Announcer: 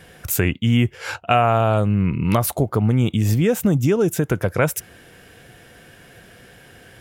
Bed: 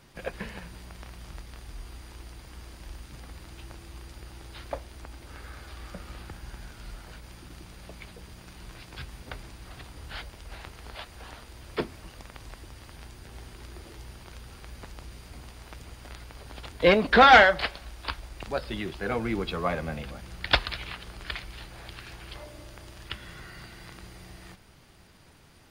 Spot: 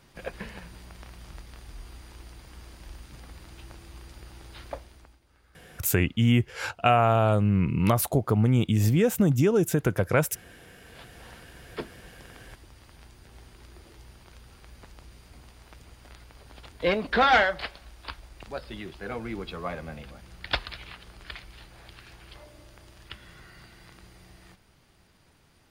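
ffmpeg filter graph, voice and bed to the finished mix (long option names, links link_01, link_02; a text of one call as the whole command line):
ffmpeg -i stem1.wav -i stem2.wav -filter_complex "[0:a]adelay=5550,volume=-4dB[link_01];[1:a]volume=12dB,afade=type=out:start_time=4.67:duration=0.53:silence=0.133352,afade=type=in:start_time=10.77:duration=0.41:silence=0.211349[link_02];[link_01][link_02]amix=inputs=2:normalize=0" out.wav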